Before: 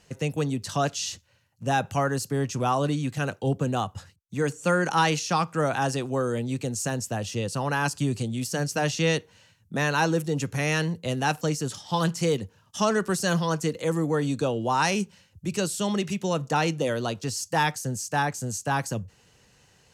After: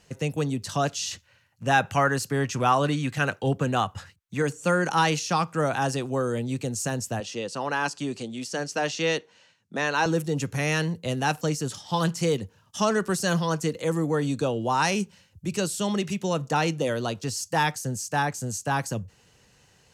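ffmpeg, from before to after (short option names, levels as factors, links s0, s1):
-filter_complex "[0:a]asettb=1/sr,asplit=3[s0][s1][s2];[s0]atrim=end=1.114[s3];[s1]atrim=start=1.11:end=4.42,asetpts=PTS-STARTPTS,afade=t=in:d=0.004:c=qsin,afade=t=out:st=3.306:d=0.004:c=qsin,equalizer=f=1800:t=o:w=1.9:g=7.5[s4];[s2]atrim=start=4.416[s5];[s3][s4]acrossfade=d=0.004:c1=hsin:c2=qsin[s6];[s6][s5]acrossfade=d=0.004:c1=qsin:c2=hsin,asettb=1/sr,asplit=3[s7][s8][s9];[s7]atrim=end=7.204[s10];[s8]atrim=start=7.2:end=10.06,asetpts=PTS-STARTPTS,afade=t=in:d=0.004:c=qsin,afade=t=out:st=2.856:d=0.004:c=qsin,highpass=260,lowpass=6800[s11];[s9]atrim=start=10.056[s12];[s10][s11]acrossfade=d=0.004:c1=hsin:c2=qsin[s13];[s13][s12]acrossfade=d=0.004:c1=qsin:c2=hsin"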